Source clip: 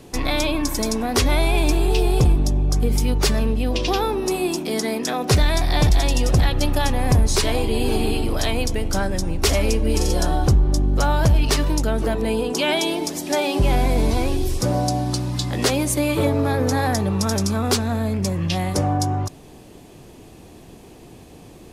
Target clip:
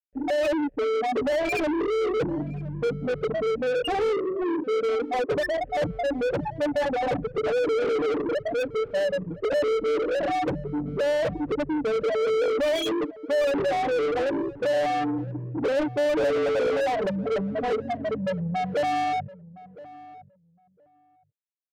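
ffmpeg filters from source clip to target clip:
ffmpeg -i in.wav -filter_complex "[0:a]afftfilt=real='re*gte(hypot(re,im),0.355)':imag='im*gte(hypot(re,im),0.355)':win_size=1024:overlap=0.75,asplit=3[link_01][link_02][link_03];[link_01]bandpass=frequency=530:width_type=q:width=8,volume=0dB[link_04];[link_02]bandpass=frequency=1840:width_type=q:width=8,volume=-6dB[link_05];[link_03]bandpass=frequency=2480:width_type=q:width=8,volume=-9dB[link_06];[link_04][link_05][link_06]amix=inputs=3:normalize=0,aecho=1:1:6.7:0.83,aresample=8000,asoftclip=type=tanh:threshold=-27.5dB,aresample=44100,asplit=2[link_07][link_08];[link_08]highpass=frequency=720:poles=1,volume=32dB,asoftclip=type=tanh:threshold=-26.5dB[link_09];[link_07][link_09]amix=inputs=2:normalize=0,lowpass=frequency=2600:poles=1,volume=-6dB,asplit=2[link_10][link_11];[link_11]adelay=1015,lowpass=frequency=1100:poles=1,volume=-17.5dB,asplit=2[link_12][link_13];[link_13]adelay=1015,lowpass=frequency=1100:poles=1,volume=0.16[link_14];[link_12][link_14]amix=inputs=2:normalize=0[link_15];[link_10][link_15]amix=inputs=2:normalize=0,volume=7.5dB" out.wav

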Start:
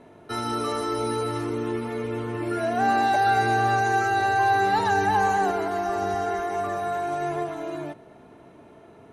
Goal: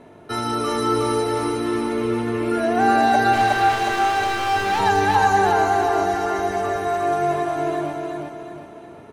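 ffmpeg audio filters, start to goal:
ffmpeg -i in.wav -filter_complex "[0:a]asettb=1/sr,asplit=3[link_01][link_02][link_03];[link_01]atrim=end=3.334[link_04];[link_02]atrim=start=3.33:end=4.8,asetpts=PTS-STARTPTS,afade=type=in:duration=0.004:curve=qsin,afade=type=out:start_time=1.466:duration=0.004:curve=qsin,asoftclip=type=hard:threshold=-24dB[link_05];[link_03]atrim=start=4.796[link_06];[link_04][link_05]acrossfade=duration=0.004:curve1=hsin:curve2=qsin[link_07];[link_07][link_06]acrossfade=duration=0.004:curve1=qsin:curve2=hsin,aecho=1:1:364|728|1092|1456|1820|2184:0.708|0.311|0.137|0.0603|0.0265|0.0117,volume=4dB" out.wav

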